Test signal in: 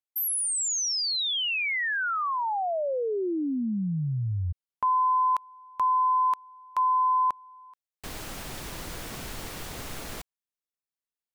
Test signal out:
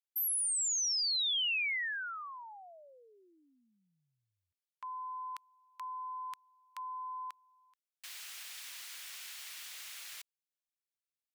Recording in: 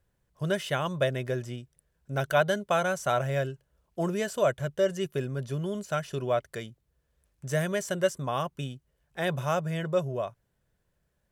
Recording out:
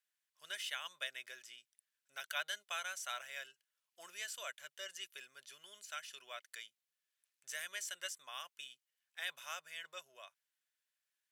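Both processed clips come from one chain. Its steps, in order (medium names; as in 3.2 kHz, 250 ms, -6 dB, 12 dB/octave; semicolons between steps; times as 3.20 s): Chebyshev high-pass 2.4 kHz, order 2; trim -4 dB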